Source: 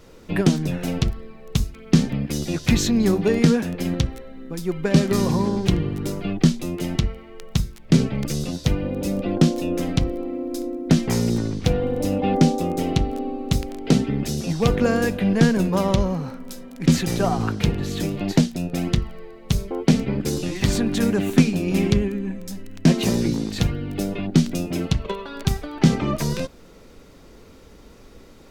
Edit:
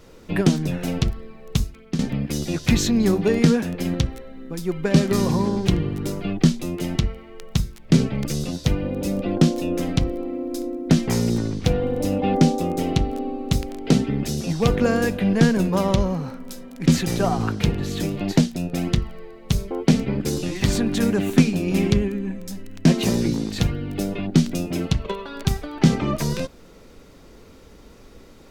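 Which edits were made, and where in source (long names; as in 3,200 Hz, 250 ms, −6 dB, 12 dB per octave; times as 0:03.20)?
0:01.59–0:01.99: fade out, to −13 dB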